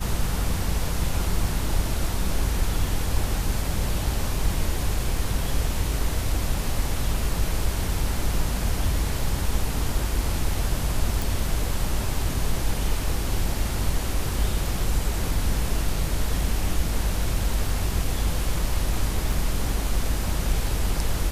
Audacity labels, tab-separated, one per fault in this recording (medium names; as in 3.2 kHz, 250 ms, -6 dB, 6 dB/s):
11.220000	11.220000	pop
19.320000	19.320000	dropout 3.1 ms